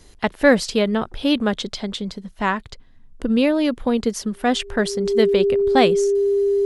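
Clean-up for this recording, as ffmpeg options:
ffmpeg -i in.wav -af "bandreject=frequency=400:width=30" out.wav

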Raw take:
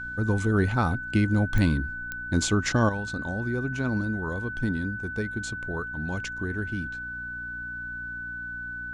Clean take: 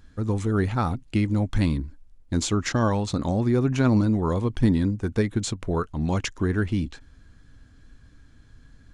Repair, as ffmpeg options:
ffmpeg -i in.wav -af "adeclick=threshold=4,bandreject=frequency=59.7:width_type=h:width=4,bandreject=frequency=119.4:width_type=h:width=4,bandreject=frequency=179.1:width_type=h:width=4,bandreject=frequency=238.8:width_type=h:width=4,bandreject=frequency=298.5:width_type=h:width=4,bandreject=frequency=1500:width=30,asetnsamples=nb_out_samples=441:pad=0,asendcmd='2.89 volume volume 8dB',volume=0dB" out.wav

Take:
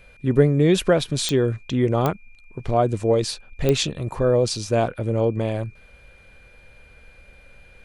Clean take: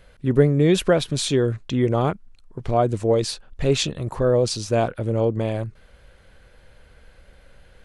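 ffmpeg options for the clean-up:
ffmpeg -i in.wav -af "adeclick=threshold=4,bandreject=frequency=2400:width=30" out.wav

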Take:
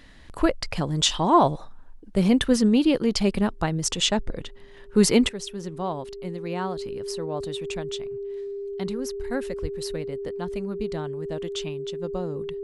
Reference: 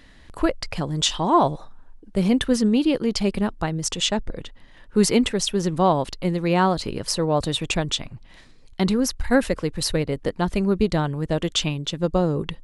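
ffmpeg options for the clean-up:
ffmpeg -i in.wav -filter_complex "[0:a]bandreject=frequency=400:width=30,asplit=3[link_01][link_02][link_03];[link_01]afade=type=out:start_time=9.61:duration=0.02[link_04];[link_02]highpass=frequency=140:width=0.5412,highpass=frequency=140:width=1.3066,afade=type=in:start_time=9.61:duration=0.02,afade=type=out:start_time=9.73:duration=0.02[link_05];[link_03]afade=type=in:start_time=9.73:duration=0.02[link_06];[link_04][link_05][link_06]amix=inputs=3:normalize=0,asetnsamples=nb_out_samples=441:pad=0,asendcmd='5.29 volume volume 11dB',volume=0dB" out.wav

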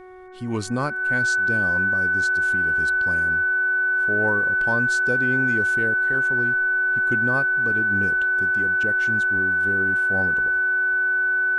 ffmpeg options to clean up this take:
ffmpeg -i in.wav -af "bandreject=frequency=369.6:width_type=h:width=4,bandreject=frequency=739.2:width_type=h:width=4,bandreject=frequency=1108.8:width_type=h:width=4,bandreject=frequency=1478.4:width_type=h:width=4,bandreject=frequency=1848:width_type=h:width=4,bandreject=frequency=2217.6:width_type=h:width=4,bandreject=frequency=1500:width=30" out.wav

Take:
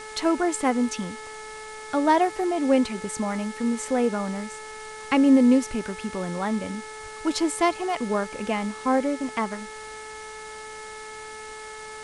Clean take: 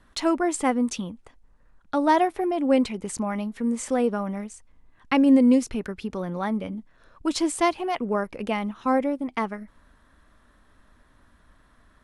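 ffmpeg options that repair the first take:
ffmpeg -i in.wav -filter_complex "[0:a]bandreject=frequency=432.8:width_type=h:width=4,bandreject=frequency=865.6:width_type=h:width=4,bandreject=frequency=1298.4:width_type=h:width=4,bandreject=frequency=1731.2:width_type=h:width=4,bandreject=frequency=2164:width_type=h:width=4,asplit=3[link_01][link_02][link_03];[link_01]afade=type=out:start_time=7.02:duration=0.02[link_04];[link_02]highpass=frequency=140:width=0.5412,highpass=frequency=140:width=1.3066,afade=type=in:start_time=7.02:duration=0.02,afade=type=out:start_time=7.14:duration=0.02[link_05];[link_03]afade=type=in:start_time=7.14:duration=0.02[link_06];[link_04][link_05][link_06]amix=inputs=3:normalize=0,afwtdn=0.0071" out.wav

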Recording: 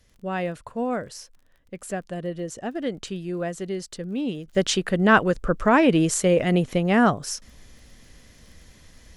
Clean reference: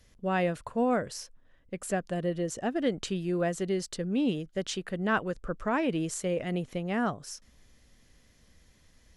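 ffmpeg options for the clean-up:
ffmpeg -i in.wav -af "adeclick=threshold=4,asetnsamples=nb_out_samples=441:pad=0,asendcmd='4.48 volume volume -11dB',volume=0dB" out.wav

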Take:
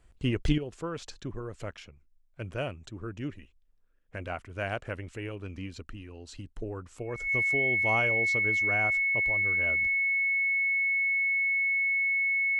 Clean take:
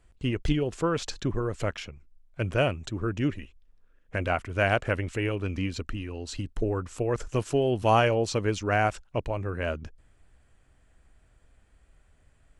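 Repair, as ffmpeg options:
ffmpeg -i in.wav -af "bandreject=frequency=2200:width=30,asetnsamples=nb_out_samples=441:pad=0,asendcmd='0.58 volume volume 9dB',volume=0dB" out.wav

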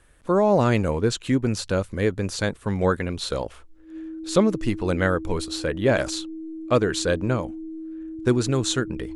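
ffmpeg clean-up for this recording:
ffmpeg -i in.wav -af "bandreject=frequency=320:width=30" out.wav

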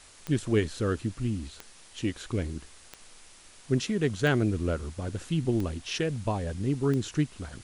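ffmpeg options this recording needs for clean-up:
ffmpeg -i in.wav -af "adeclick=threshold=4,afwtdn=0.0028" out.wav

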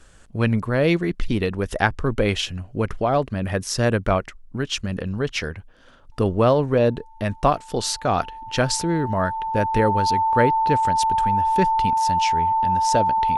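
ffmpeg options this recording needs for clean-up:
ffmpeg -i in.wav -af "bandreject=frequency=890:width=30" out.wav

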